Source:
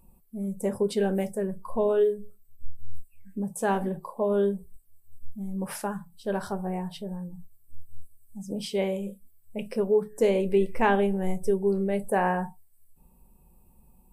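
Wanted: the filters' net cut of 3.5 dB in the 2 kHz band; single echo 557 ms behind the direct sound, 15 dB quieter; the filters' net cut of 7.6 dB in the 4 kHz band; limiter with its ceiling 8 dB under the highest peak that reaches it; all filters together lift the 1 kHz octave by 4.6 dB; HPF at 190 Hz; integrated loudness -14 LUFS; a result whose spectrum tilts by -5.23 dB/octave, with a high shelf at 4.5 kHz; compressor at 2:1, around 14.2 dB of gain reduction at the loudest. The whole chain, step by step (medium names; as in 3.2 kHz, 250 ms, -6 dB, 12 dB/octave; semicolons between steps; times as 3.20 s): high-pass 190 Hz; peaking EQ 1 kHz +7.5 dB; peaking EQ 2 kHz -6 dB; peaking EQ 4 kHz -5.5 dB; treble shelf 4.5 kHz -6 dB; compression 2:1, threshold -44 dBFS; peak limiter -31 dBFS; delay 557 ms -15 dB; trim +28 dB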